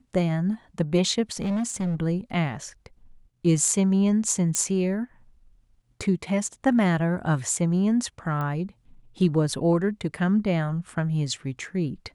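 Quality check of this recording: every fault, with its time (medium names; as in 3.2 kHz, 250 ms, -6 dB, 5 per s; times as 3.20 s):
1.32–1.95 s: clipped -23 dBFS
4.55 s: pop -11 dBFS
8.41 s: pop -20 dBFS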